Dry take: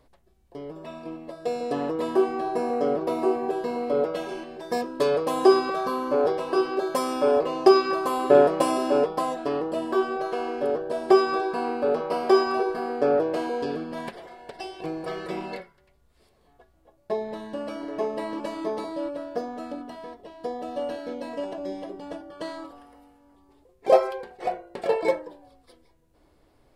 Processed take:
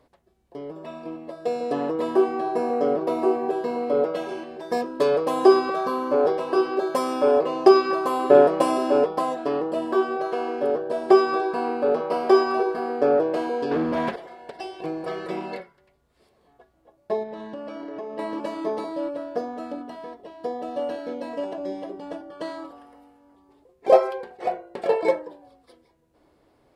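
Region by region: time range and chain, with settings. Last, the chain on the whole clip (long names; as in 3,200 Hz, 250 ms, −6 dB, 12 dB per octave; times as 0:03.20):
0:13.71–0:14.16: leveller curve on the samples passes 3 + high-shelf EQ 5,000 Hz −11.5 dB
0:17.23–0:18.19: low-pass filter 5,900 Hz + notch filter 4,100 Hz, Q 20 + downward compressor, threshold −33 dBFS
whole clip: high-pass filter 290 Hz 6 dB per octave; spectral tilt −1.5 dB per octave; level +2 dB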